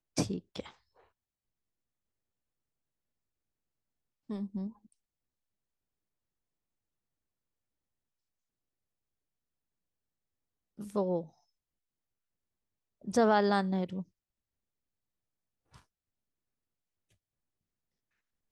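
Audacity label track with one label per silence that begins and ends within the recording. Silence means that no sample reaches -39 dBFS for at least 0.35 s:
0.670000	4.300000	silence
4.690000	10.800000	silence
11.230000	13.070000	silence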